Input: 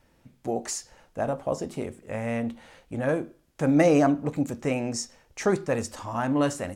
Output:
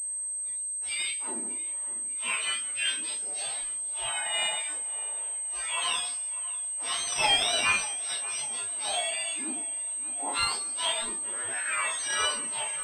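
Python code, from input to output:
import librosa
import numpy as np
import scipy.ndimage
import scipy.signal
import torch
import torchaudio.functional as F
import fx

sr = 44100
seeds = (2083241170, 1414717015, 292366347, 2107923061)

y = fx.octave_mirror(x, sr, pivot_hz=1300.0)
y = fx.stretch_vocoder(y, sr, factor=1.9)
y = scipy.signal.sosfilt(scipy.signal.butter(4, 470.0, 'highpass', fs=sr, output='sos'), y)
y = fx.doubler(y, sr, ms=31.0, db=-6.5)
y = fx.echo_wet_lowpass(y, sr, ms=595, feedback_pct=61, hz=2800.0, wet_db=-16)
y = fx.pwm(y, sr, carrier_hz=8300.0)
y = y * librosa.db_to_amplitude(3.0)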